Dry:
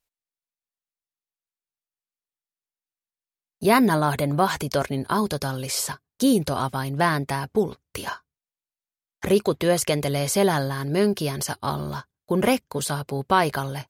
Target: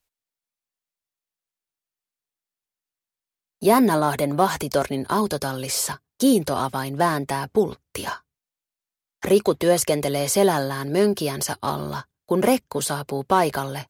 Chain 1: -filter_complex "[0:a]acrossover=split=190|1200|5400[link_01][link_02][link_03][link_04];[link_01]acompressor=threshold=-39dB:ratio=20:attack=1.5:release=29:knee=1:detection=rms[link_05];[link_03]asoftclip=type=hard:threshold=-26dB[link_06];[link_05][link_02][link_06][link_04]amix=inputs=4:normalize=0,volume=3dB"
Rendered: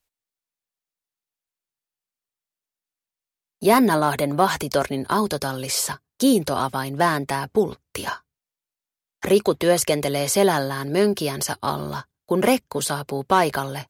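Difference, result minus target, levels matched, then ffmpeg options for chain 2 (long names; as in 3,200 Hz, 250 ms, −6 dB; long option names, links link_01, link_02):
hard clipping: distortion −6 dB
-filter_complex "[0:a]acrossover=split=190|1200|5400[link_01][link_02][link_03][link_04];[link_01]acompressor=threshold=-39dB:ratio=20:attack=1.5:release=29:knee=1:detection=rms[link_05];[link_03]asoftclip=type=hard:threshold=-34.5dB[link_06];[link_05][link_02][link_06][link_04]amix=inputs=4:normalize=0,volume=3dB"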